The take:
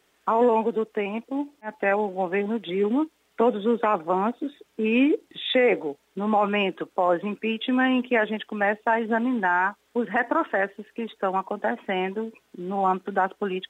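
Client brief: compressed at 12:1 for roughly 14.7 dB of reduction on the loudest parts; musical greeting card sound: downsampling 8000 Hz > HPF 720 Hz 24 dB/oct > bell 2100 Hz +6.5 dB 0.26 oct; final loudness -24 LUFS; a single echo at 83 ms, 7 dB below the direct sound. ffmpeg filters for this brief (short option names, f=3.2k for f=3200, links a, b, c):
-af "acompressor=threshold=-31dB:ratio=12,aecho=1:1:83:0.447,aresample=8000,aresample=44100,highpass=f=720:w=0.5412,highpass=f=720:w=1.3066,equalizer=f=2.1k:t=o:w=0.26:g=6.5,volume=15dB"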